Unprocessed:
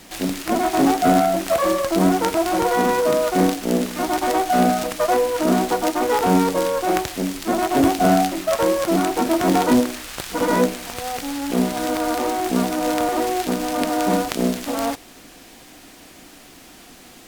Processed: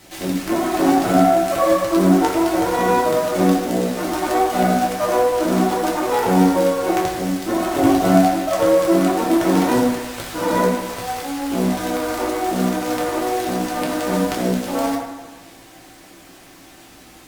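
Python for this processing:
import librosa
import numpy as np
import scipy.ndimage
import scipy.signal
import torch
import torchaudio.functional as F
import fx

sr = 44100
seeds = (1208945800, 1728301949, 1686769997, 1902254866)

y = fx.rev_fdn(x, sr, rt60_s=1.3, lf_ratio=0.8, hf_ratio=0.5, size_ms=53.0, drr_db=-4.0)
y = F.gain(torch.from_numpy(y), -4.5).numpy()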